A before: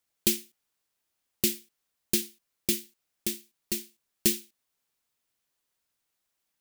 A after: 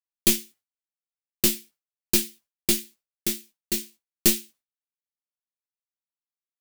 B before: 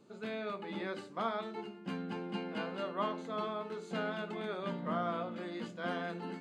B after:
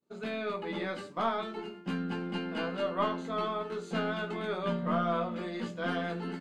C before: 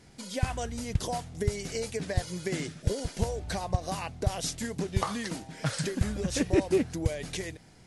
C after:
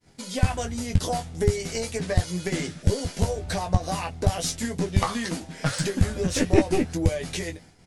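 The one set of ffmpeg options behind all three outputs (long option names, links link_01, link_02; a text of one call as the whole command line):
ffmpeg -i in.wav -af "aeval=exprs='0.447*(cos(1*acos(clip(val(0)/0.447,-1,1)))-cos(1*PI/2))+0.0708*(cos(4*acos(clip(val(0)/0.447,-1,1)))-cos(4*PI/2))':channel_layout=same,aecho=1:1:12|22:0.501|0.376,agate=range=-33dB:threshold=-48dB:ratio=3:detection=peak,volume=3.5dB" out.wav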